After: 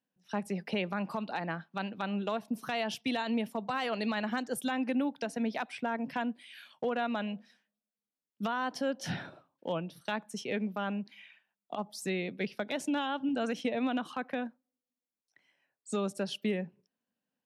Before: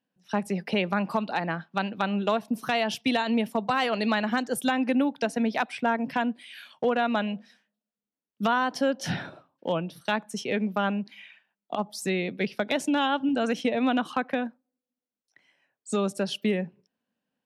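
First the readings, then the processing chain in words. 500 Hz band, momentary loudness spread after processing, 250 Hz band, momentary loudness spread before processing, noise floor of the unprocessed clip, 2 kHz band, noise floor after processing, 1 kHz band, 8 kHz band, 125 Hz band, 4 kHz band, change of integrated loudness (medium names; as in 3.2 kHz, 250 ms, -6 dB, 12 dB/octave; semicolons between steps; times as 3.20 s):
-7.0 dB, 7 LU, -6.5 dB, 7 LU, under -85 dBFS, -7.5 dB, under -85 dBFS, -8.0 dB, -6.0 dB, -6.5 dB, -7.0 dB, -7.0 dB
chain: peak limiter -16.5 dBFS, peak gain reduction 5 dB; trim -6 dB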